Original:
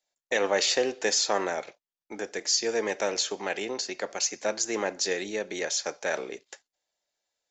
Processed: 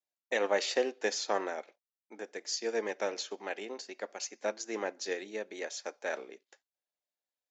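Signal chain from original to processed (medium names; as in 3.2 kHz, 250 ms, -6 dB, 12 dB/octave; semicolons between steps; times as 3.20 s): low-pass 3.8 kHz 6 dB/octave; vibrato 0.57 Hz 24 cents; brick-wall FIR high-pass 190 Hz; upward expansion 1.5:1, over -42 dBFS; trim -2.5 dB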